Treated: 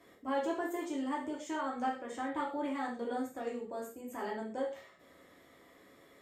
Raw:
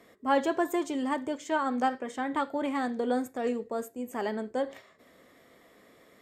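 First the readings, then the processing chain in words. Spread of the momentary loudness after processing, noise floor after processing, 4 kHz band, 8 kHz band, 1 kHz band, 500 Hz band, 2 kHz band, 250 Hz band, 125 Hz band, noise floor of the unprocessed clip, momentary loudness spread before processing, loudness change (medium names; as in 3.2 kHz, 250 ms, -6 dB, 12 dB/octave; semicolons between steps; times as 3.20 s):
6 LU, -61 dBFS, -7.5 dB, -5.5 dB, -6.5 dB, -7.0 dB, -7.0 dB, -6.5 dB, no reading, -60 dBFS, 7 LU, -7.0 dB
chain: compression 1.5:1, threshold -40 dBFS, peak gain reduction 7.5 dB; gated-style reverb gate 150 ms falling, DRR -4 dB; trim -7 dB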